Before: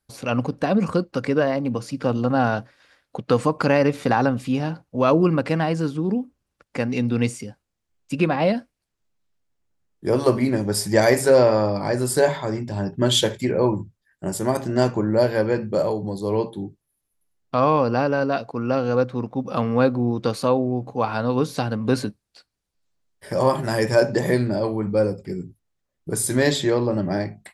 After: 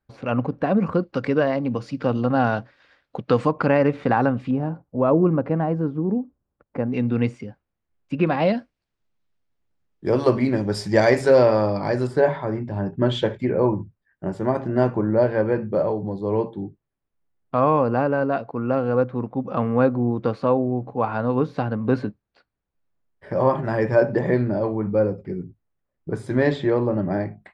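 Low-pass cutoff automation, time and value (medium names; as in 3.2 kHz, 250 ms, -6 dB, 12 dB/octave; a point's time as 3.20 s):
2.1 kHz
from 1.03 s 3.8 kHz
from 3.51 s 2.3 kHz
from 4.51 s 1 kHz
from 6.94 s 2.2 kHz
from 8.27 s 4.3 kHz
from 12.07 s 1.9 kHz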